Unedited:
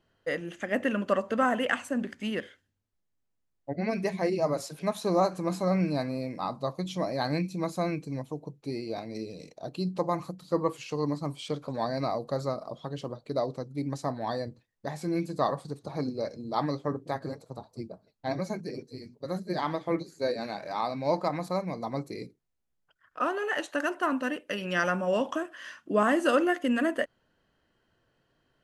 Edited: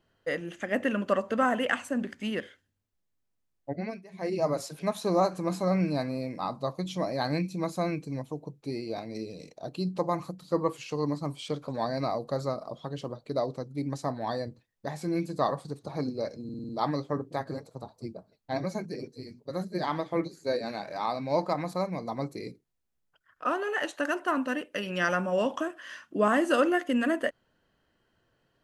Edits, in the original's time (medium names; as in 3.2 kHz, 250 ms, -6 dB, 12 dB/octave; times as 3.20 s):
3.71–4.40 s: dip -22 dB, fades 0.32 s
16.44 s: stutter 0.05 s, 6 plays